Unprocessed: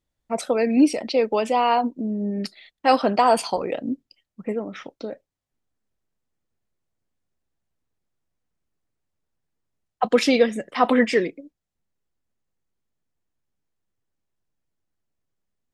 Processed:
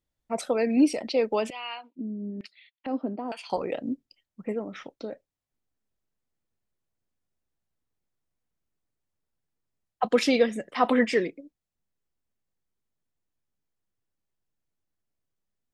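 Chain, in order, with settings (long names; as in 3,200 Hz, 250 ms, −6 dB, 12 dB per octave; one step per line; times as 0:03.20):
0:01.50–0:03.50: auto-filter band-pass square 1.1 Hz 270–2,600 Hz
level −4 dB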